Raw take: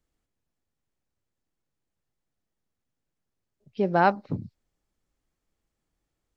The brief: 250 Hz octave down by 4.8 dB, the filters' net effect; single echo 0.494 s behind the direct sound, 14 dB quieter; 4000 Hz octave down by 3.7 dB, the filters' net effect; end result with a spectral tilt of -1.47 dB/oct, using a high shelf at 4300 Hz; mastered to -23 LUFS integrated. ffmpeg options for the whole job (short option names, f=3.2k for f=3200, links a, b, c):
-af "equalizer=f=250:t=o:g=-8,equalizer=f=4k:t=o:g=-9,highshelf=f=4.3k:g=7.5,aecho=1:1:494:0.2,volume=4.5dB"